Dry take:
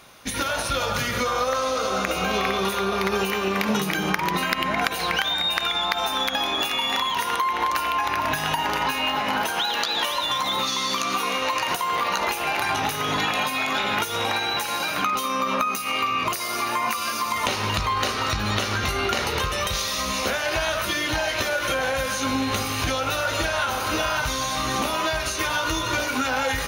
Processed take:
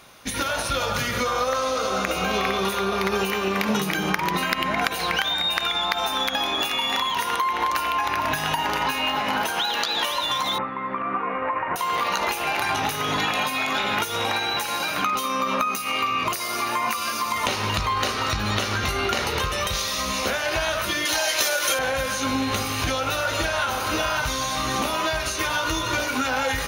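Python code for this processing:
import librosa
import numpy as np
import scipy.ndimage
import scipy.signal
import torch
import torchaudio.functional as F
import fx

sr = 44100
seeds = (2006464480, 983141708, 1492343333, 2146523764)

y = fx.steep_lowpass(x, sr, hz=2000.0, slope=36, at=(10.58, 11.76))
y = fx.bass_treble(y, sr, bass_db=-15, treble_db=11, at=(21.05, 21.79))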